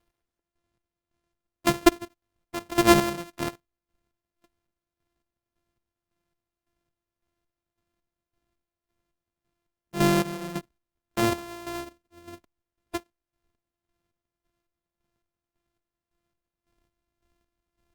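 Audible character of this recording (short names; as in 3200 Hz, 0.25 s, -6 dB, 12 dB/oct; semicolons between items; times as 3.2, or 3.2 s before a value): a buzz of ramps at a fixed pitch in blocks of 128 samples; chopped level 1.8 Hz, depth 65%, duty 40%; Opus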